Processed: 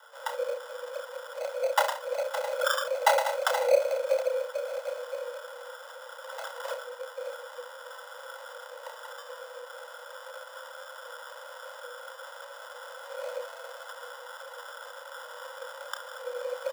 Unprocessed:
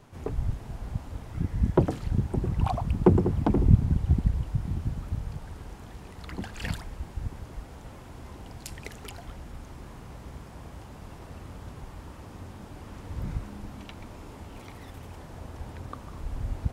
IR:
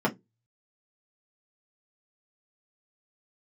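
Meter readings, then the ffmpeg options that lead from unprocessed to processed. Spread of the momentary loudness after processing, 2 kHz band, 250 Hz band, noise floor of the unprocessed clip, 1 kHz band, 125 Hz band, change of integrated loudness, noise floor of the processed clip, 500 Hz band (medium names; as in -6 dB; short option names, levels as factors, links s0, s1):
17 LU, +11.5 dB, under -40 dB, -46 dBFS, +7.0 dB, under -40 dB, -4.5 dB, -46 dBFS, +6.0 dB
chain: -filter_complex "[0:a]acrossover=split=710[s0][s1];[s1]alimiter=level_in=1.19:limit=0.0631:level=0:latency=1:release=357,volume=0.841[s2];[s0][s2]amix=inputs=2:normalize=0,equalizer=f=930:w=0.78:g=14.5,asplit=2[s3][s4];[s4]aecho=0:1:30|67:0.501|0.266[s5];[s3][s5]amix=inputs=2:normalize=0,acrusher=samples=23:mix=1:aa=0.000001,aecho=1:1:2:0.51,afreqshift=460,volume=0.376"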